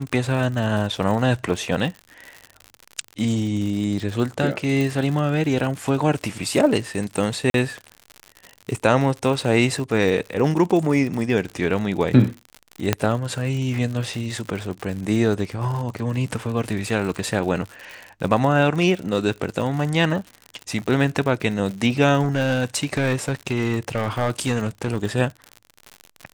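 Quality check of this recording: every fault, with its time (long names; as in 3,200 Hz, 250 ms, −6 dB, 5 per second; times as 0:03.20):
surface crackle 85 per second −28 dBFS
0:04.81: click
0:07.50–0:07.54: drop-out 42 ms
0:12.93: click −3 dBFS
0:22.22–0:24.97: clipping −15.5 dBFS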